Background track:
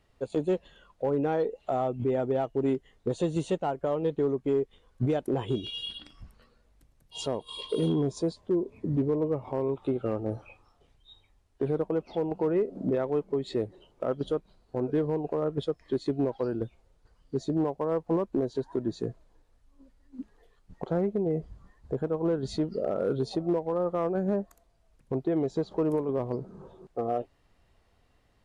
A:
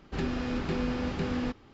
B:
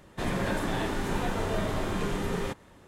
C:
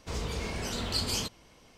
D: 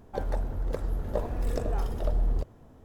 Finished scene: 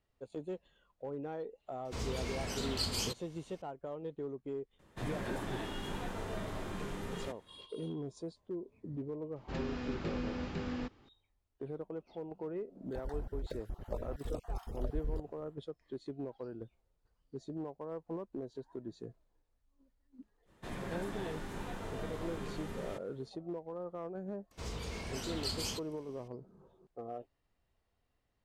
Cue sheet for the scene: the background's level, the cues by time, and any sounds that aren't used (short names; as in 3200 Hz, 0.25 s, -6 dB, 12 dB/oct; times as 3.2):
background track -14 dB
1.85 add C -4.5 dB
4.79 add B -10.5 dB
9.36 add A -7.5 dB
12.77 add D -9.5 dB, fades 0.10 s + random spectral dropouts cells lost 23%
20.45 add B -12.5 dB, fades 0.05 s
24.51 add C -7 dB